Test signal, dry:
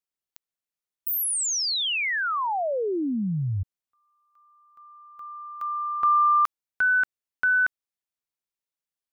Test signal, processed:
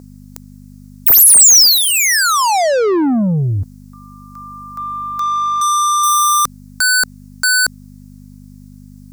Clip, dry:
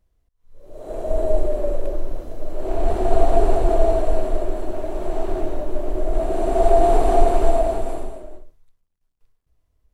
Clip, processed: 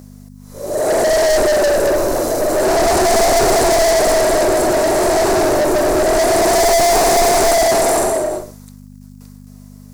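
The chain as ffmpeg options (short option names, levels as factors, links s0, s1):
-filter_complex "[0:a]aeval=exprs='val(0)+0.00398*(sin(2*PI*50*n/s)+sin(2*PI*2*50*n/s)/2+sin(2*PI*3*50*n/s)/3+sin(2*PI*4*50*n/s)/4+sin(2*PI*5*50*n/s)/5)':c=same,asplit=2[s0][s1];[s1]highpass=f=720:p=1,volume=100,asoftclip=type=tanh:threshold=0.891[s2];[s0][s2]amix=inputs=2:normalize=0,lowpass=f=1600:p=1,volume=0.501,aexciter=amount=9.3:drive=4.8:freq=4600,volume=0.562"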